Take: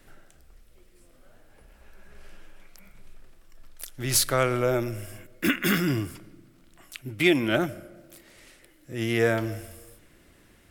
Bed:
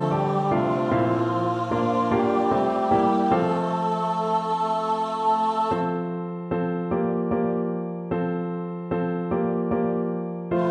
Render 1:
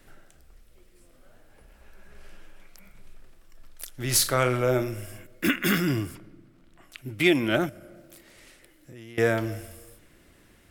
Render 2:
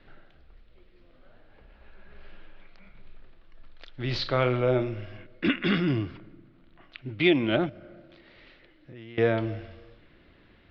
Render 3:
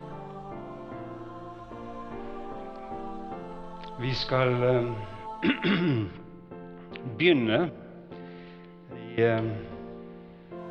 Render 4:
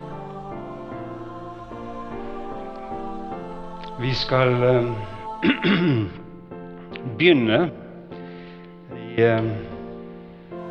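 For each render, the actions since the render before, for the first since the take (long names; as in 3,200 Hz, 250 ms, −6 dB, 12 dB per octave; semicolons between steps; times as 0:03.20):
0:04.05–0:05.00: flutter between parallel walls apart 6.8 metres, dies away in 0.23 s; 0:06.15–0:06.98: high-shelf EQ 4,100 Hz −10.5 dB; 0:07.69–0:09.18: downward compressor, threshold −42 dBFS
Butterworth low-pass 4,300 Hz 48 dB per octave; dynamic equaliser 1,600 Hz, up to −5 dB, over −43 dBFS, Q 1.6
mix in bed −18 dB
level +6 dB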